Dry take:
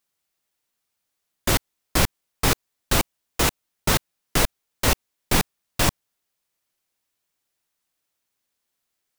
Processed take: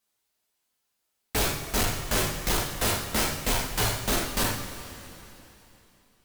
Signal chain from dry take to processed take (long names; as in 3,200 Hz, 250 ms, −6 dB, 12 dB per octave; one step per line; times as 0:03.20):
gliding playback speed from 99% → 195%
coupled-rooms reverb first 0.45 s, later 3.2 s, from −18 dB, DRR −3.5 dB
gain into a clipping stage and back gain 18.5 dB
level −3.5 dB